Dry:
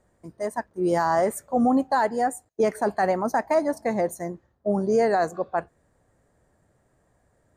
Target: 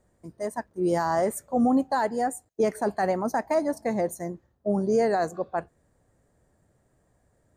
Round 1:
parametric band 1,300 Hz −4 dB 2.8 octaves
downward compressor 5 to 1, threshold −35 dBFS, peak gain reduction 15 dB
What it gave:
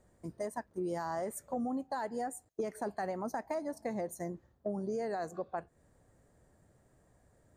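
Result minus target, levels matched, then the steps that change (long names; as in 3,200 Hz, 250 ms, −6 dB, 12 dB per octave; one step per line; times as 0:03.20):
downward compressor: peak gain reduction +15 dB
remove: downward compressor 5 to 1, threshold −35 dBFS, peak gain reduction 15 dB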